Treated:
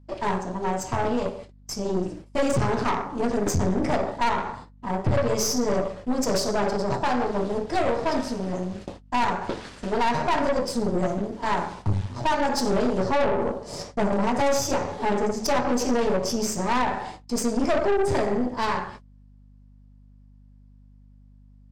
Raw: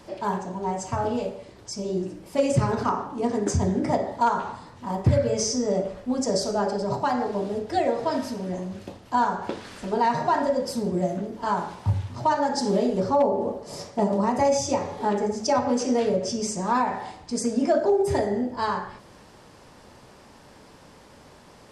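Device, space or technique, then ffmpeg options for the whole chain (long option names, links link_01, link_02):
valve amplifier with mains hum: -filter_complex "[0:a]agate=range=-34dB:threshold=-41dB:ratio=16:detection=peak,lowpass=frequency=9800:width=0.5412,lowpass=frequency=9800:width=1.3066,asettb=1/sr,asplit=3[link_01][link_02][link_03];[link_01]atrim=end=4.184[link_04];[link_02]atrim=start=4.18:end=5.15,asetpts=PTS-STARTPTS,afade=type=in:duration=0.004:curve=qsin,afade=type=out:start_time=0.966:duration=0.004:curve=qsin,equalizer=frequency=7300:width=0.4:gain=-5[link_05];[link_03]atrim=start=5.146[link_06];[link_04][link_05]acrossfade=duration=0.004:curve1=hsin:curve2=qsin[link_07];[link_07][link_06]acrossfade=duration=0.004:curve1=qsin:curve2=hsin,aeval=exprs='(tanh(17.8*val(0)+0.75)-tanh(0.75))/17.8':channel_layout=same,aeval=exprs='val(0)+0.00158*(sin(2*PI*50*n/s)+sin(2*PI*2*50*n/s)/2+sin(2*PI*3*50*n/s)/3+sin(2*PI*4*50*n/s)/4+sin(2*PI*5*50*n/s)/5)':channel_layout=same,volume=6dB"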